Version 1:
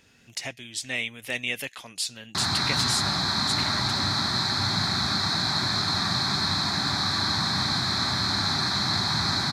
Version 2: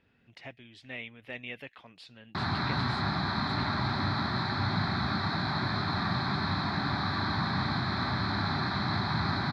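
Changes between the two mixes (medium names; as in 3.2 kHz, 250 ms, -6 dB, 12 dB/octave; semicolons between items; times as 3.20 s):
speech -6.5 dB; master: add distance through air 400 m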